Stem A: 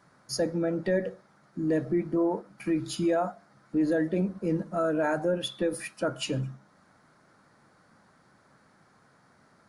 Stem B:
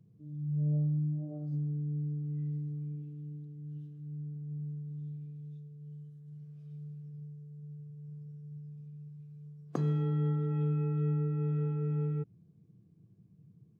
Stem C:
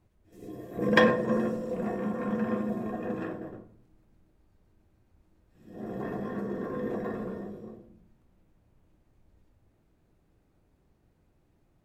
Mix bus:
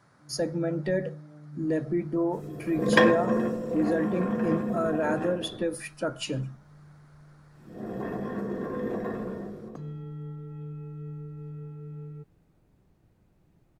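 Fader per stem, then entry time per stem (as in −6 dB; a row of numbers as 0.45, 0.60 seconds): −1.0, −8.5, +1.5 decibels; 0.00, 0.00, 2.00 seconds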